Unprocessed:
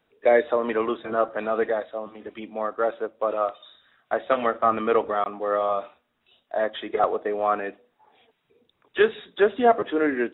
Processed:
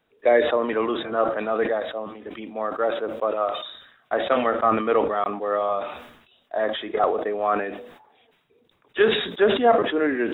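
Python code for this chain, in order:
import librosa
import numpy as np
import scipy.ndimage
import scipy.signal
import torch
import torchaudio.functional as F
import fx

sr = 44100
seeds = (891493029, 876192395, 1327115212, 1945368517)

y = fx.sustainer(x, sr, db_per_s=69.0)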